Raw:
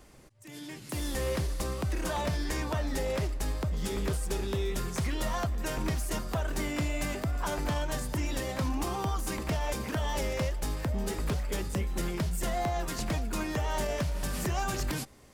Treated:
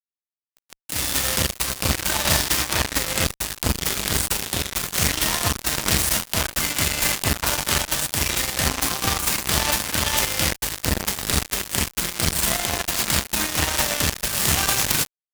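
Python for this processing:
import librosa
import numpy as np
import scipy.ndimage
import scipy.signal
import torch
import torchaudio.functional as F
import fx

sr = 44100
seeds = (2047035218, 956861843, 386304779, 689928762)

y = scipy.signal.sosfilt(scipy.signal.butter(4, 65.0, 'highpass', fs=sr, output='sos'), x)
y = fx.tone_stack(y, sr, knobs='5-5-5')
y = fx.cheby_harmonics(y, sr, harmonics=(3,), levels_db=(-8,), full_scale_db=-27.5)
y = fx.rev_schroeder(y, sr, rt60_s=0.98, comb_ms=26, drr_db=6.5)
y = fx.fuzz(y, sr, gain_db=59.0, gate_db=-60.0)
y = F.gain(torch.from_numpy(y), 8.5).numpy()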